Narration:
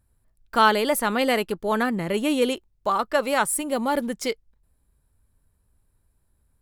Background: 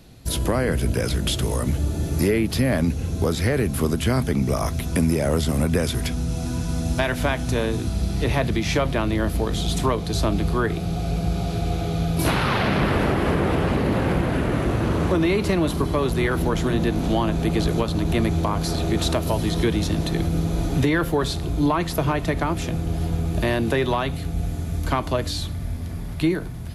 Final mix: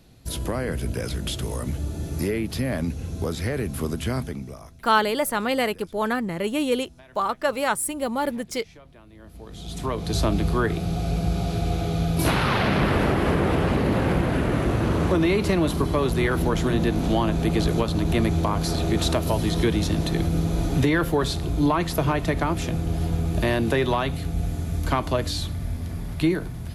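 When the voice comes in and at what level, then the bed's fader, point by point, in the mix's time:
4.30 s, −1.5 dB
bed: 0:04.18 −5.5 dB
0:04.87 −27.5 dB
0:09.09 −27.5 dB
0:10.10 −0.5 dB

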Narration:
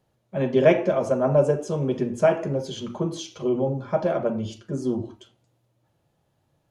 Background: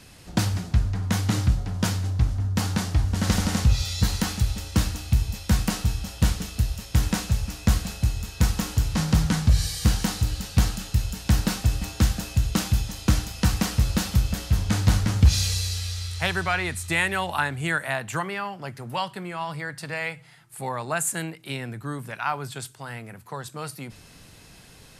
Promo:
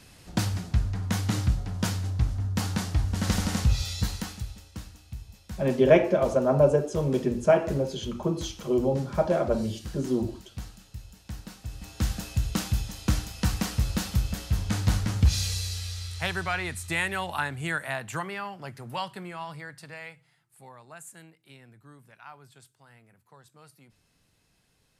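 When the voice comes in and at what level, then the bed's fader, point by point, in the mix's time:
5.25 s, −1.0 dB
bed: 0:03.90 −3.5 dB
0:04.81 −18.5 dB
0:11.57 −18.5 dB
0:12.13 −4.5 dB
0:19.22 −4.5 dB
0:20.82 −19.5 dB

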